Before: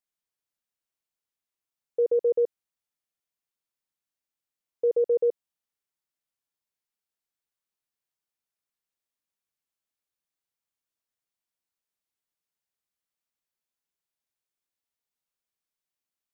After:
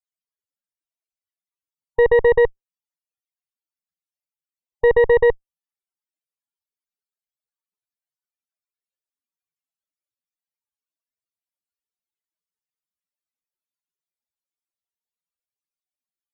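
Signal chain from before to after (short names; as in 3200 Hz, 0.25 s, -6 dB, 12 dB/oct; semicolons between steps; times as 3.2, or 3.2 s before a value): dynamic EQ 370 Hz, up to +7 dB, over -37 dBFS, Q 1.1; loudest bins only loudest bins 32; added harmonics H 4 -11 dB, 8 -33 dB, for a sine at -12 dBFS; gain +3.5 dB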